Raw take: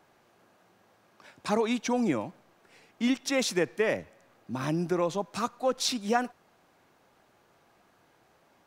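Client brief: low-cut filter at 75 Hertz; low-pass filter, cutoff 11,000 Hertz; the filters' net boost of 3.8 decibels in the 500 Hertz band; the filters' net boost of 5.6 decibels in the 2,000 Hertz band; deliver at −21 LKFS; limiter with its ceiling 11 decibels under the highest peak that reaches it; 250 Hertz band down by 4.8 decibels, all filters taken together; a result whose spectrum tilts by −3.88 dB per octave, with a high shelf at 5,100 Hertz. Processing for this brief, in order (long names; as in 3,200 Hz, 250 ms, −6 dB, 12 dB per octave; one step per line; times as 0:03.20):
high-pass filter 75 Hz
low-pass filter 11,000 Hz
parametric band 250 Hz −8 dB
parametric band 500 Hz +6 dB
parametric band 2,000 Hz +7.5 dB
high-shelf EQ 5,100 Hz −7.5 dB
level +10.5 dB
brickwall limiter −9 dBFS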